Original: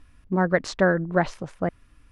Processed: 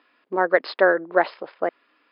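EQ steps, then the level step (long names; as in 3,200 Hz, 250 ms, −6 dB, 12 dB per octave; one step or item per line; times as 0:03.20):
high-pass filter 360 Hz 24 dB per octave
linear-phase brick-wall low-pass 5,200 Hz
high-frequency loss of the air 76 metres
+4.5 dB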